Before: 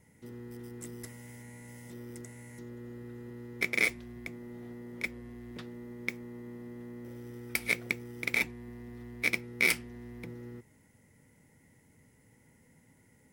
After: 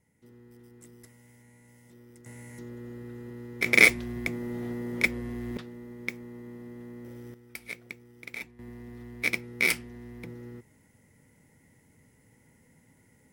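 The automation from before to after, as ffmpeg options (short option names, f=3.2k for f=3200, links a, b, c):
-af "asetnsamples=n=441:p=0,asendcmd='2.26 volume volume 3dB;3.66 volume volume 10.5dB;5.57 volume volume 1dB;7.34 volume volume -10dB;8.59 volume volume 1.5dB',volume=-8.5dB"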